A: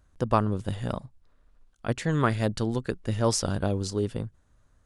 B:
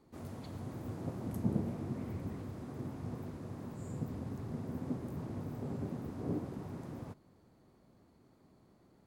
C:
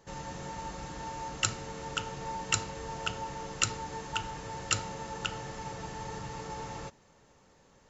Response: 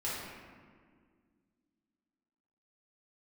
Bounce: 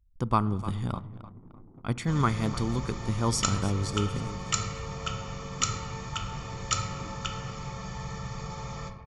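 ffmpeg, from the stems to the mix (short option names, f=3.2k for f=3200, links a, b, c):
-filter_complex "[0:a]volume=-3.5dB,asplit=3[a][b][c];[b]volume=-21.5dB[d];[c]volume=-14.5dB[e];[1:a]bass=f=250:g=-8,treble=f=4k:g=-11,adelay=700,volume=-9.5dB,asplit=2[f][g];[g]volume=-14.5dB[h];[2:a]aecho=1:1:1.7:0.66,adelay=2000,volume=-3dB,asplit=2[i][j];[j]volume=-6dB[k];[3:a]atrim=start_sample=2205[l];[d][h][k]amix=inputs=3:normalize=0[m];[m][l]afir=irnorm=-1:irlink=0[n];[e]aecho=0:1:302|604|906|1208|1510|1812:1|0.41|0.168|0.0689|0.0283|0.0116[o];[a][f][i][n][o]amix=inputs=5:normalize=0,anlmdn=0.00251,aecho=1:1:0.9:0.57"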